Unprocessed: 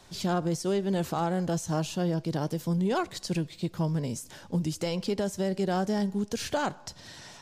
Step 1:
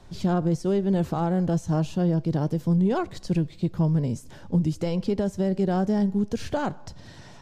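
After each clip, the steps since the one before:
spectral tilt −2.5 dB per octave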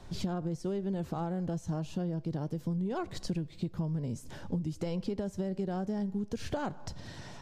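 downward compressor 6 to 1, threshold −31 dBFS, peak gain reduction 12.5 dB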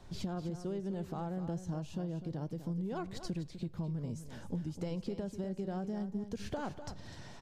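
single-tap delay 250 ms −11 dB
level −4.5 dB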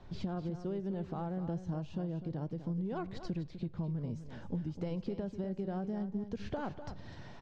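high-frequency loss of the air 170 metres
level +1 dB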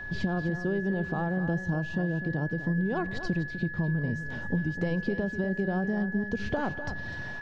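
steady tone 1,700 Hz −45 dBFS
feedback echo with a swinging delay time 164 ms, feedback 50%, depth 191 cents, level −23 dB
level +8 dB

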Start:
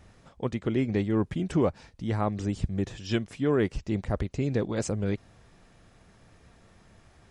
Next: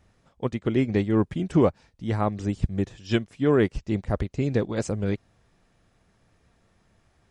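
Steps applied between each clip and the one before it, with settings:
expander for the loud parts 1.5 to 1, over −46 dBFS
level +5.5 dB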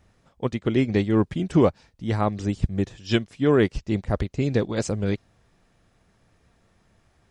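dynamic equaliser 4,400 Hz, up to +5 dB, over −49 dBFS, Q 0.99
level +1.5 dB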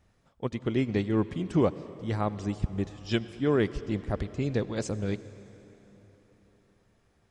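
convolution reverb RT60 4.0 s, pre-delay 72 ms, DRR 14.5 dB
level −6 dB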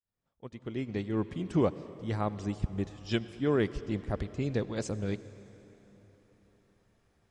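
fade in at the beginning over 1.54 s
level −2.5 dB

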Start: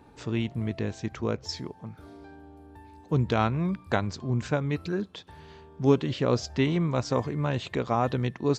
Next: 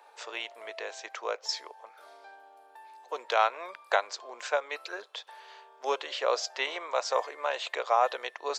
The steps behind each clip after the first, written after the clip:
Butterworth high-pass 530 Hz 36 dB per octave
level +3 dB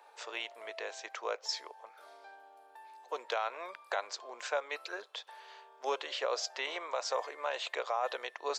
brickwall limiter −19.5 dBFS, peak gain reduction 9.5 dB
level −2.5 dB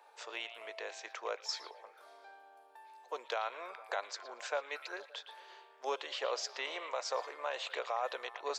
echo through a band-pass that steps 114 ms, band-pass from 3,000 Hz, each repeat −0.7 octaves, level −9.5 dB
level −2.5 dB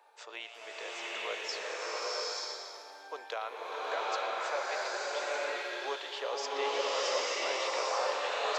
slow-attack reverb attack 880 ms, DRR −7.5 dB
level −1.5 dB

